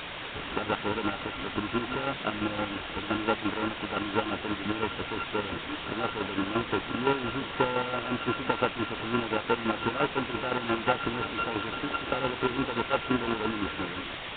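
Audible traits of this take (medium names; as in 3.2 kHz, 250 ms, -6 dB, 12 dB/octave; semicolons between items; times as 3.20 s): a buzz of ramps at a fixed pitch in blocks of 32 samples; chopped level 5.8 Hz, depth 60%, duty 35%; a quantiser's noise floor 6-bit, dither triangular; Nellymoser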